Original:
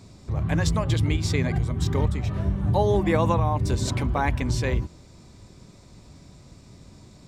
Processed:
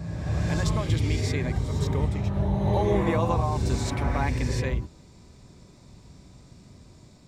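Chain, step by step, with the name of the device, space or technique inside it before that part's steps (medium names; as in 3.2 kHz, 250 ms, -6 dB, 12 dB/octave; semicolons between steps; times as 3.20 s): reverse reverb (reverse; reverberation RT60 2.0 s, pre-delay 44 ms, DRR 2 dB; reverse); trim -4.5 dB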